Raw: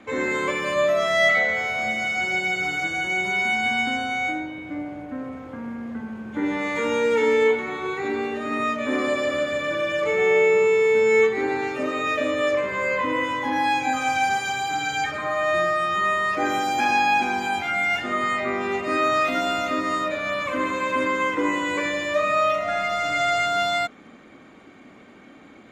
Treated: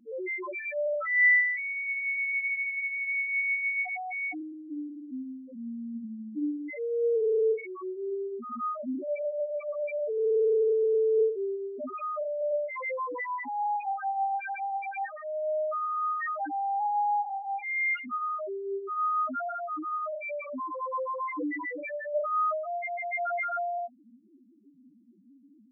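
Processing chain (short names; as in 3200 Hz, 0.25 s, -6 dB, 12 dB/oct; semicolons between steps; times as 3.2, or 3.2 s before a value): 0.61–1.41 tilt +3.5 dB/oct; loudest bins only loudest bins 1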